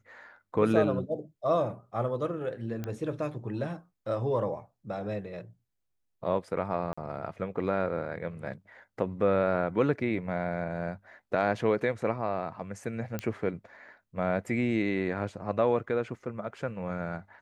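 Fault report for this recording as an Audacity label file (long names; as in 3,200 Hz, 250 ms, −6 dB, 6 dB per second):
2.840000	2.840000	click −22 dBFS
6.930000	6.970000	drop-out 45 ms
13.190000	13.190000	click −18 dBFS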